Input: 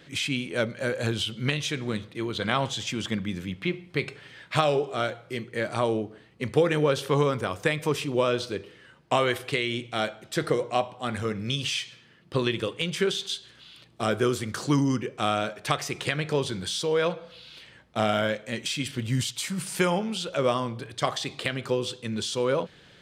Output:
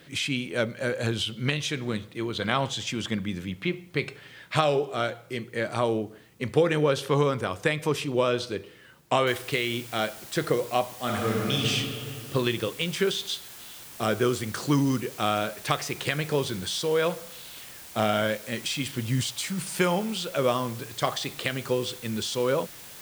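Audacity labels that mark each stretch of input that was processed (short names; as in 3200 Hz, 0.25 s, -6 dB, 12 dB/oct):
9.270000	9.270000	noise floor step -66 dB -45 dB
10.950000	11.680000	reverb throw, RT60 2.6 s, DRR -2 dB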